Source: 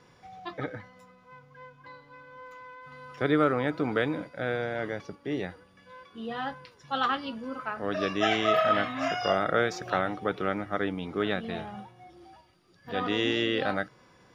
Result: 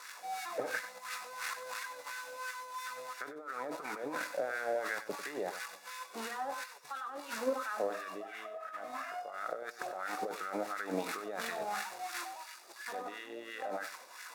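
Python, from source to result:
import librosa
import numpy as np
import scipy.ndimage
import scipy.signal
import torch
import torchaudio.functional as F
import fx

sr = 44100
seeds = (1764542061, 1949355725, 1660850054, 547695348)

p1 = x + 0.5 * 10.0 ** (-23.0 / 20.0) * np.diff(np.sign(x), prepend=np.sign(x[:1]))
p2 = scipy.signal.sosfilt(scipy.signal.butter(2, 170.0, 'highpass', fs=sr, output='sos'), p1)
p3 = fx.high_shelf(p2, sr, hz=4300.0, db=9.0)
p4 = fx.notch(p3, sr, hz=3100.0, q=6.1)
p5 = fx.over_compress(p4, sr, threshold_db=-32.0, ratio=-0.5)
p6 = fx.wah_lfo(p5, sr, hz=2.9, low_hz=570.0, high_hz=1600.0, q=2.4)
p7 = p6 + fx.echo_single(p6, sr, ms=96, db=-13.0, dry=0)
y = p7 * 10.0 ** (7.5 / 20.0)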